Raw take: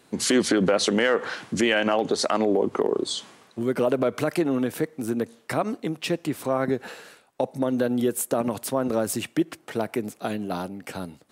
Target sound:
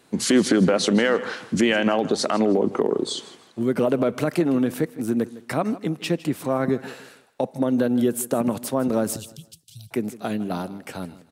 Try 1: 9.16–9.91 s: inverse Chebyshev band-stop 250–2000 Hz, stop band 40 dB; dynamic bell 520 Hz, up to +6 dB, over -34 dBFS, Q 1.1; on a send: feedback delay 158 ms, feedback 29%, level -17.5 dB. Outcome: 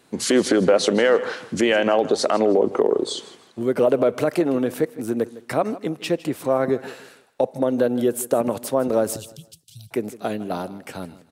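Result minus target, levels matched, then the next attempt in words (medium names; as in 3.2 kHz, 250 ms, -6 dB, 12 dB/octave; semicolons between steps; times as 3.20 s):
250 Hz band -3.5 dB
9.16–9.91 s: inverse Chebyshev band-stop 250–2000 Hz, stop band 40 dB; dynamic bell 190 Hz, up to +6 dB, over -34 dBFS, Q 1.1; on a send: feedback delay 158 ms, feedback 29%, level -17.5 dB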